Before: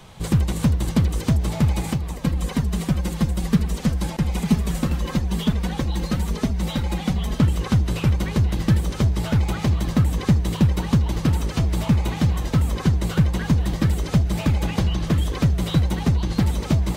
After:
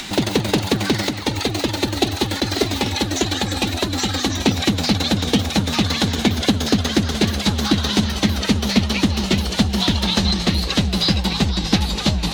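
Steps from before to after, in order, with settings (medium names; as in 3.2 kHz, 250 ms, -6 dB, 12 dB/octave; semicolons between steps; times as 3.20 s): gliding tape speed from 182% -> 93%; peaking EQ 2.7 kHz +13 dB 1.8 oct; upward compressor, threshold -25 dBFS; graphic EQ with 31 bands 125 Hz -6 dB, 200 Hz +8 dB, 800 Hz +5 dB, 3.15 kHz +8 dB, 5 kHz +4 dB; formant shift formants +4 st; trim -1 dB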